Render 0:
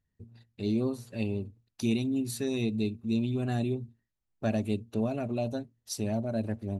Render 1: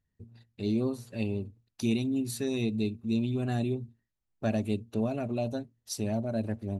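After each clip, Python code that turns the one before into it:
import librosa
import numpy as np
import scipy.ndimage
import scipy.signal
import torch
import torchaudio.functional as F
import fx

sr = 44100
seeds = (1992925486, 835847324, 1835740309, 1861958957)

y = x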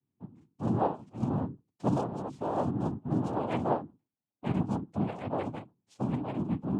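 y = fx.octave_resonator(x, sr, note='F#', decay_s=0.11)
y = fx.noise_vocoder(y, sr, seeds[0], bands=4)
y = y * 10.0 ** (8.5 / 20.0)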